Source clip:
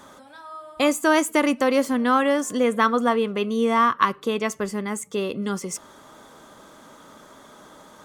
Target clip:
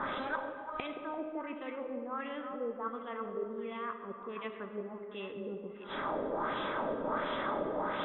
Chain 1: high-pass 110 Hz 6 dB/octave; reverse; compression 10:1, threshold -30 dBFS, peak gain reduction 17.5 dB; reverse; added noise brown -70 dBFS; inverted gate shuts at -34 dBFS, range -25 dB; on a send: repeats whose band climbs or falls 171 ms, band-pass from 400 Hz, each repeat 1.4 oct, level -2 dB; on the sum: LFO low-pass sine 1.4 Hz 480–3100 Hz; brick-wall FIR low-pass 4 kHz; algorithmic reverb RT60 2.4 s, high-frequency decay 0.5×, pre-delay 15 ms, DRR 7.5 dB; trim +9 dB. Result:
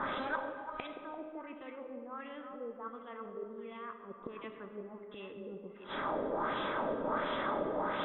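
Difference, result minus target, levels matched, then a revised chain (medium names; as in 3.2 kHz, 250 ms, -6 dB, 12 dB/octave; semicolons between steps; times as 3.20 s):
compression: peak gain reduction +6 dB
high-pass 110 Hz 6 dB/octave; reverse; compression 10:1, threshold -23.5 dBFS, peak gain reduction 11.5 dB; reverse; added noise brown -70 dBFS; inverted gate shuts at -34 dBFS, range -25 dB; on a send: repeats whose band climbs or falls 171 ms, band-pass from 400 Hz, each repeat 1.4 oct, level -2 dB; on the sum: LFO low-pass sine 1.4 Hz 480–3100 Hz; brick-wall FIR low-pass 4 kHz; algorithmic reverb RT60 2.4 s, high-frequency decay 0.5×, pre-delay 15 ms, DRR 7.5 dB; trim +9 dB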